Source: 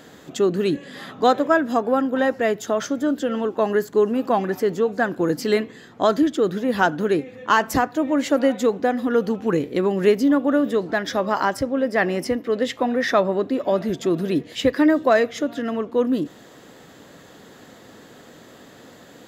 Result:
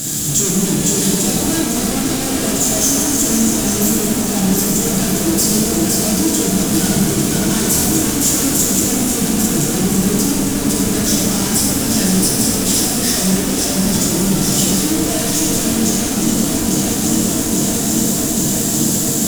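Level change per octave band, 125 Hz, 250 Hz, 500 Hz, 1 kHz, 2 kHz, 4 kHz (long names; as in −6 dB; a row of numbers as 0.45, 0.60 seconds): +15.0, +7.0, −2.5, −2.5, 0.0, +14.0 decibels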